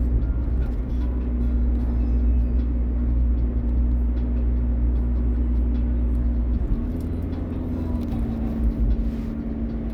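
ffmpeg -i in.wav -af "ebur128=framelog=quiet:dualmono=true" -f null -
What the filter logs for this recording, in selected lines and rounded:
Integrated loudness:
  I:         -21.9 LUFS
  Threshold: -31.9 LUFS
Loudness range:
  LRA:         2.5 LU
  Threshold: -41.6 LUFS
  LRA low:   -23.3 LUFS
  LRA high:  -20.7 LUFS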